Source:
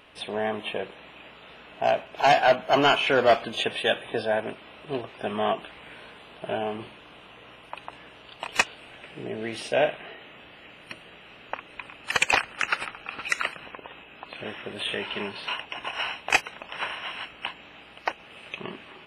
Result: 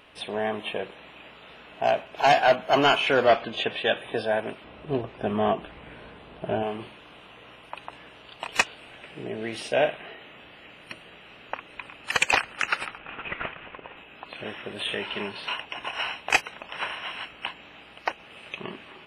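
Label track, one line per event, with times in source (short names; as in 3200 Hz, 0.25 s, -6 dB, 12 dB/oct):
3.260000	3.970000	LPF 4200 Hz
4.640000	6.630000	tilt -2.5 dB/oct
12.980000	13.970000	CVSD 16 kbps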